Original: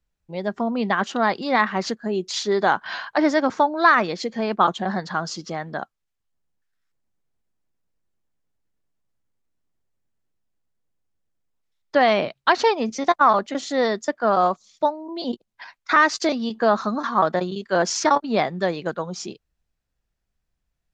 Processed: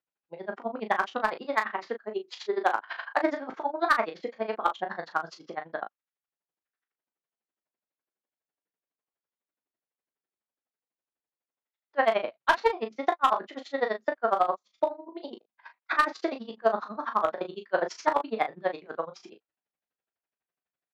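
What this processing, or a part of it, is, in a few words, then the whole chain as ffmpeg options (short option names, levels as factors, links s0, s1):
helicopter radio: -filter_complex "[0:a]highpass=390,lowpass=2700,aeval=exprs='val(0)*pow(10,-32*(0.5-0.5*cos(2*PI*12*n/s))/20)':c=same,asoftclip=type=hard:threshold=0.251,asettb=1/sr,asplit=3[s0][s1][s2];[s0]atrim=end=1.534[s3];[s1]atrim=start=1.53:end=3.14,asetpts=PTS-STARTPTS,afade=t=in:d=0.004:c=qsin,afade=t=out:st=1.606:d=0.004:c=qsin,highpass=f=230:w=0.5412,highpass=f=230:w=1.3066[s4];[s2]atrim=start=3.136[s5];[s3][s4]acrossfade=d=0.004:c1=hsin:c2=qsin[s6];[s6][s5]acrossfade=d=0.004:c1=qsin:c2=hsin,aecho=1:1:18|37:0.316|0.376"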